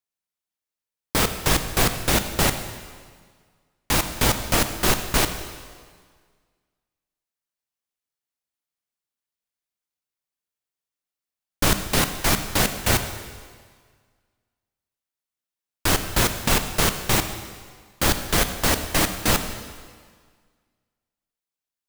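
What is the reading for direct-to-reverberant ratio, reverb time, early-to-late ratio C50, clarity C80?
8.0 dB, 1.7 s, 9.0 dB, 10.0 dB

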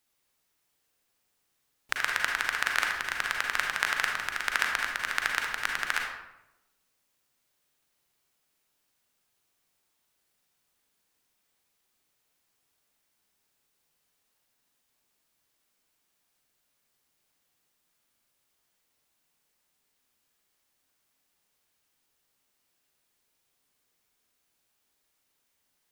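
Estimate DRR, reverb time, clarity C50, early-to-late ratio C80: 0.5 dB, 0.90 s, 2.0 dB, 5.5 dB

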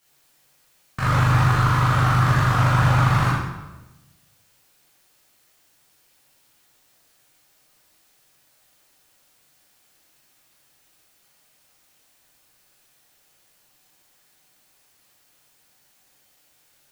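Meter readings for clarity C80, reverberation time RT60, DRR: 2.5 dB, 1.1 s, -10.0 dB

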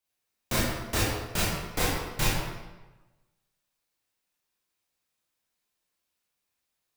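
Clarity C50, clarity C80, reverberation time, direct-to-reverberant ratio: -1.5 dB, 2.0 dB, 1.1 s, -7.5 dB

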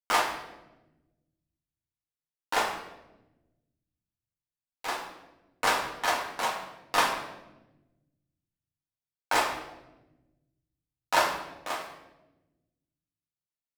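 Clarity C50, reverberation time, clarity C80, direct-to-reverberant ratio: 6.0 dB, 1.0 s, 8.0 dB, -2.5 dB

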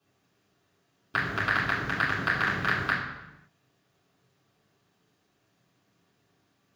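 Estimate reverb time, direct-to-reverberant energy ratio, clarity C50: 0.95 s, -9.5 dB, 3.5 dB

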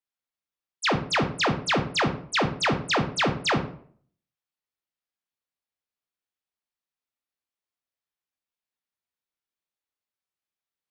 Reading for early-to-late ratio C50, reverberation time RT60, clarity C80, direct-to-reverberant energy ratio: 10.0 dB, 0.55 s, 14.0 dB, 4.5 dB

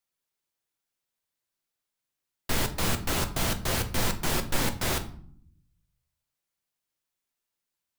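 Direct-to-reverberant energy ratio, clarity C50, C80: 6.5 dB, 14.0 dB, 17.5 dB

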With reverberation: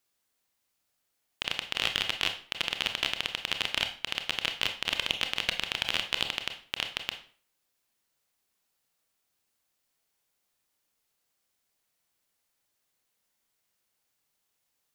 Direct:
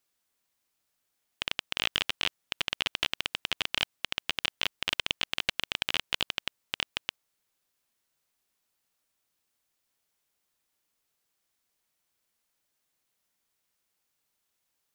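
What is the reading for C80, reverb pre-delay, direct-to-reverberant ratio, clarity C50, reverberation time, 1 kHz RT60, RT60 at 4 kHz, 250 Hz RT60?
14.5 dB, 25 ms, 6.0 dB, 10.0 dB, 0.45 s, 0.45 s, 0.35 s, 0.45 s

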